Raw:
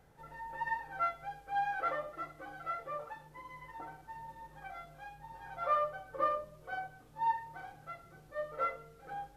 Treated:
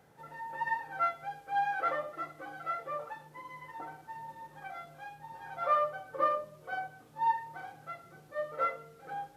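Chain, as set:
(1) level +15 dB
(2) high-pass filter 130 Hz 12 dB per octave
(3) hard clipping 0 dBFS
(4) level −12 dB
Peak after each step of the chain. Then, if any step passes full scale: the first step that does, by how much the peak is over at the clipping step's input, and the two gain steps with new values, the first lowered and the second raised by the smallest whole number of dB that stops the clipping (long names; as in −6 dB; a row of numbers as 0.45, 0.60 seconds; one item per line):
−5.5, −5.0, −5.0, −17.0 dBFS
no step passes full scale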